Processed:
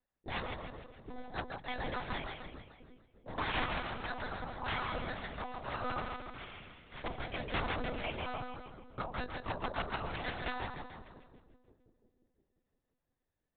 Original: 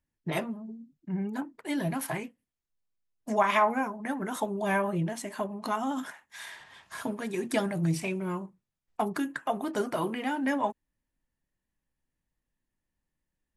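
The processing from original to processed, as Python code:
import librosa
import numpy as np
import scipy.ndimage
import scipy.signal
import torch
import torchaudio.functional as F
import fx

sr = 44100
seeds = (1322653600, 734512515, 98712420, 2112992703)

y = fx.lowpass(x, sr, hz=1100.0, slope=6)
y = fx.spec_gate(y, sr, threshold_db=-15, keep='weak')
y = fx.rider(y, sr, range_db=4, speed_s=2.0)
y = (np.mod(10.0 ** (32.0 / 20.0) * y + 1.0, 2.0) - 1.0) / 10.0 ** (32.0 / 20.0)
y = fx.echo_split(y, sr, split_hz=400.0, low_ms=350, high_ms=148, feedback_pct=52, wet_db=-4.5)
y = np.repeat(y[::8], 8)[:len(y)]
y = fx.lpc_monotone(y, sr, seeds[0], pitch_hz=250.0, order=10)
y = F.gain(torch.from_numpy(y), 6.0).numpy()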